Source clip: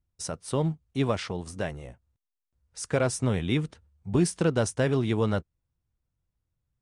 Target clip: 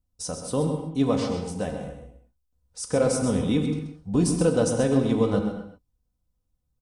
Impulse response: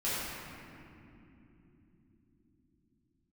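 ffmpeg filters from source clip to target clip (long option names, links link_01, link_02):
-filter_complex "[0:a]equalizer=frequency=2000:width=1.1:gain=-10.5,aecho=1:1:4:0.54,aecho=1:1:131:0.335,asplit=2[link_01][link_02];[1:a]atrim=start_sample=2205,afade=type=out:start_time=0.3:duration=0.01,atrim=end_sample=13671,asetrate=41895,aresample=44100[link_03];[link_02][link_03]afir=irnorm=-1:irlink=0,volume=-9.5dB[link_04];[link_01][link_04]amix=inputs=2:normalize=0"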